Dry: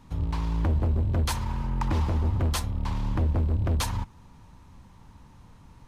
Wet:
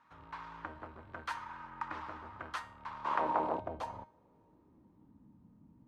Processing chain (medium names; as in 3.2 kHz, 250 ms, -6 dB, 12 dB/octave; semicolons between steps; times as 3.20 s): 3.04–3.59 s: spectral peaks clipped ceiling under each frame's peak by 27 dB; band-pass sweep 1.4 kHz -> 230 Hz, 2.80–5.30 s; feedback comb 310 Hz, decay 0.43 s, harmonics all, mix 70%; trim +9 dB